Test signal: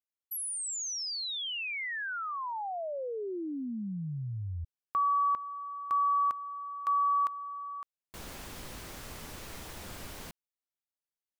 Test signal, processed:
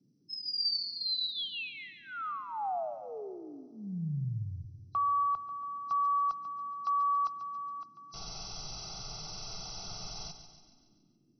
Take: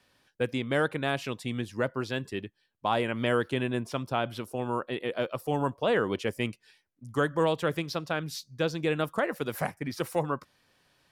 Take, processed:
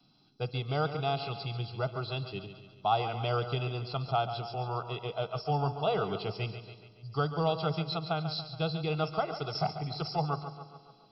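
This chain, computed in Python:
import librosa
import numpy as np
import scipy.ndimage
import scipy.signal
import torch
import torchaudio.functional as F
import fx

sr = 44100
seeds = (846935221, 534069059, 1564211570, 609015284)

p1 = fx.freq_compress(x, sr, knee_hz=3900.0, ratio=4.0)
p2 = fx.fixed_phaser(p1, sr, hz=360.0, stages=8)
p3 = p2 + 0.69 * np.pad(p2, (int(1.5 * sr / 1000.0), 0))[:len(p2)]
p4 = fx.dmg_noise_band(p3, sr, seeds[0], low_hz=120.0, high_hz=330.0, level_db=-70.0)
p5 = p4 + fx.echo_feedback(p4, sr, ms=141, feedback_pct=54, wet_db=-11, dry=0)
y = fx.rev_spring(p5, sr, rt60_s=2.1, pass_ms=(54,), chirp_ms=60, drr_db=17.5)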